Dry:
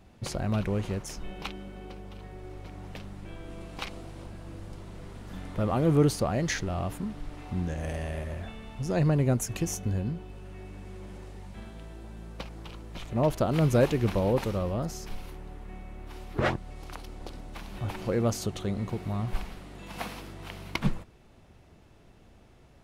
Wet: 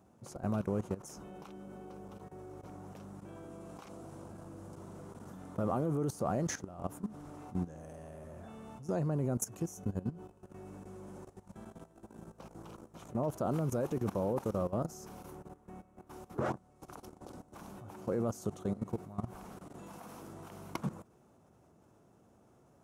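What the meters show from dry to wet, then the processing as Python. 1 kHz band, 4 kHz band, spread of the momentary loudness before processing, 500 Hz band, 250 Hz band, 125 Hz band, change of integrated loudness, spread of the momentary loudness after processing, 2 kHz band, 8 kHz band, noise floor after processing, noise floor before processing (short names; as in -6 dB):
-6.0 dB, -16.0 dB, 19 LU, -7.0 dB, -6.5 dB, -9.5 dB, -9.0 dB, 18 LU, -14.0 dB, -7.0 dB, -65 dBFS, -56 dBFS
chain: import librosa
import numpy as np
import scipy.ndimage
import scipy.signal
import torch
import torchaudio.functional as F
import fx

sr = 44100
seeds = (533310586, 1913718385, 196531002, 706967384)

y = scipy.signal.sosfilt(scipy.signal.butter(2, 130.0, 'highpass', fs=sr, output='sos'), x)
y = fx.level_steps(y, sr, step_db=16)
y = fx.band_shelf(y, sr, hz=2900.0, db=-12.0, octaves=1.7)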